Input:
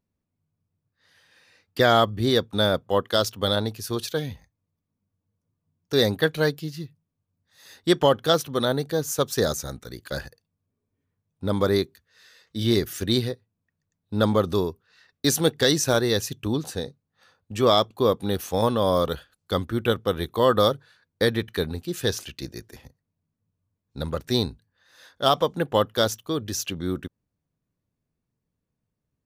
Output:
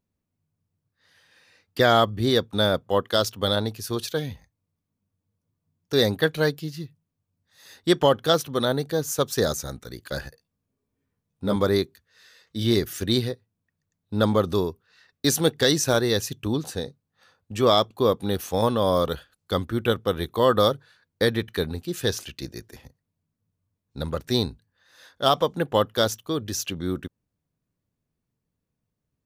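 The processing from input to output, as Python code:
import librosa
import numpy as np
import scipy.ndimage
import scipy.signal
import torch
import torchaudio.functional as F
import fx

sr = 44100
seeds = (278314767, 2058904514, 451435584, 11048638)

y = fx.doubler(x, sr, ms=15.0, db=-4.0, at=(10.21, 11.56))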